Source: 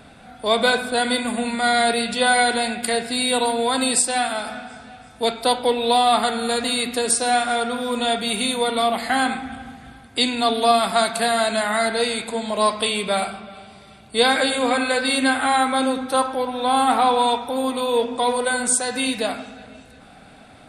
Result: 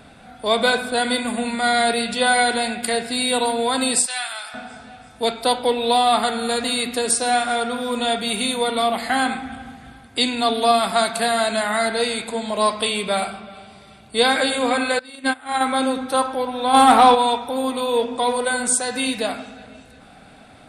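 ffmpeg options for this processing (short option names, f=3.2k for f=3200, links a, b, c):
-filter_complex "[0:a]asettb=1/sr,asplit=3[a][b][c];[a]atrim=end=4.064[d];[b]atrim=start=4.06:end=4.54,asetpts=PTS-STARTPTS,afade=t=in:d=0.004:c=qsin,afade=t=out:st=0.476:d=0.004:c=qsin,highpass=1.4k[e];[c]atrim=start=4.536[f];[d][e]acrossfade=d=0.004:c1=hsin:c2=qsin[g];[g][f]acrossfade=d=0.004:c1=qsin:c2=hsin,asettb=1/sr,asplit=3[h][i][j];[h]atrim=end=14.994[k];[i]atrim=start=14.99:end=15.61,asetpts=PTS-STARTPTS,afade=t=in:d=0.004:c=qsin,afade=t=out:st=0.616:d=0.004:c=qsin,agate=range=-20dB:threshold=-18dB:ratio=16:release=100:detection=peak[l];[j]atrim=start=15.606[m];[k][l]acrossfade=d=0.004:c1=hsin:c2=qsin[n];[n][m]acrossfade=d=0.004:c1=qsin:c2=hsin,asplit=3[o][p][q];[o]afade=t=out:st=16.73:d=0.02[r];[p]acontrast=77,afade=t=in:st=16.73:d=0.02,afade=t=out:st=17.14:d=0.02[s];[q]afade=t=in:st=17.14:d=0.02[t];[r][s][t]amix=inputs=3:normalize=0"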